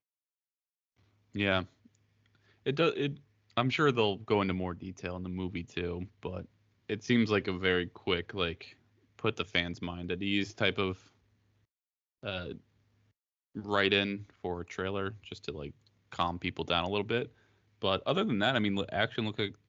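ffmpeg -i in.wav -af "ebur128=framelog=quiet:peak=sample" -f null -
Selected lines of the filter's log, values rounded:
Integrated loudness:
  I:         -32.2 LUFS
  Threshold: -43.0 LUFS
Loudness range:
  LRA:         3.9 LU
  Threshold: -53.6 LUFS
  LRA low:   -35.7 LUFS
  LRA high:  -31.8 LUFS
Sample peak:
  Peak:      -11.4 dBFS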